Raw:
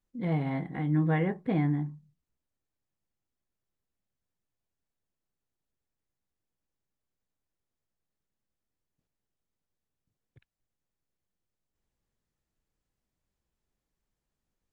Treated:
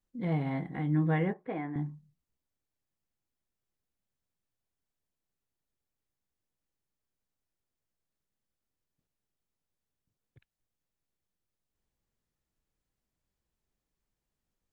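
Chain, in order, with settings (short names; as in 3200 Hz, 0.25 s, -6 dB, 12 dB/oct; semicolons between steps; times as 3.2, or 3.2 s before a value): 1.33–1.76 three-band isolator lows -17 dB, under 340 Hz, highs -23 dB, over 2800 Hz; gain -1.5 dB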